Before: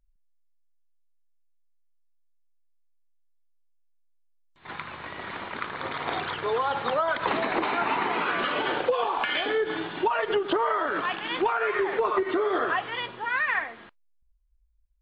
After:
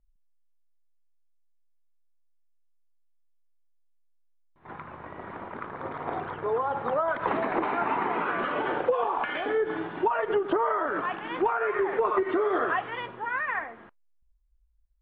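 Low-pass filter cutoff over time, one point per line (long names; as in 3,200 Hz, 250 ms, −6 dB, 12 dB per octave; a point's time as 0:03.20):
0:06.70 1,100 Hz
0:07.28 1,600 Hz
0:11.77 1,600 Hz
0:12.20 2,200 Hz
0:12.76 2,200 Hz
0:13.33 1,500 Hz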